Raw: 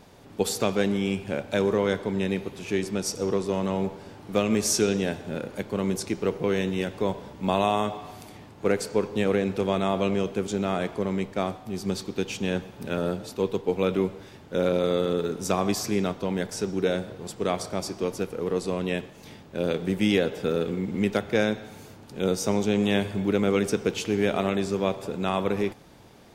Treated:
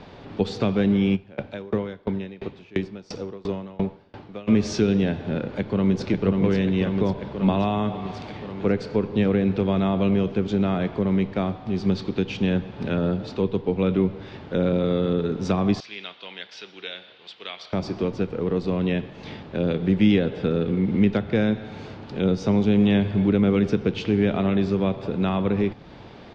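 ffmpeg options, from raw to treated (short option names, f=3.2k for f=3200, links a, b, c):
-filter_complex "[0:a]asplit=3[a][b][c];[a]afade=t=out:st=1.15:d=0.02[d];[b]aeval=exprs='val(0)*pow(10,-29*if(lt(mod(2.9*n/s,1),2*abs(2.9)/1000),1-mod(2.9*n/s,1)/(2*abs(2.9)/1000),(mod(2.9*n/s,1)-2*abs(2.9)/1000)/(1-2*abs(2.9)/1000))/20)':c=same,afade=t=in:st=1.15:d=0.02,afade=t=out:st=4.47:d=0.02[e];[c]afade=t=in:st=4.47:d=0.02[f];[d][e][f]amix=inputs=3:normalize=0,asplit=2[g][h];[h]afade=t=in:st=5.45:d=0.01,afade=t=out:st=6.05:d=0.01,aecho=0:1:540|1080|1620|2160|2700|3240|3780|4320|4860|5400|5940:0.749894|0.487431|0.31683|0.20594|0.133861|0.0870095|0.0565562|0.0367615|0.023895|0.0155317|0.0100956[i];[g][i]amix=inputs=2:normalize=0,asettb=1/sr,asplit=3[j][k][l];[j]atrim=end=15.804[m];[k]atrim=start=15.8:end=17.73,asetpts=PTS-STARTPTS,afade=t=in:d=0.004:c=qsin,afade=t=out:st=1.926:d=0.004:c=qsin,bandpass=f=3.2k:t=q:w=2.1[n];[l]atrim=start=17.726[o];[m][n]acrossfade=d=0.004:c1=hsin:c2=qsin[p];[p][o]acrossfade=d=0.004:c1=qsin:c2=hsin,lowpass=f=4.3k:w=0.5412,lowpass=f=4.3k:w=1.3066,acrossover=split=260[q][r];[r]acompressor=threshold=-41dB:ratio=2[s];[q][s]amix=inputs=2:normalize=0,volume=8.5dB"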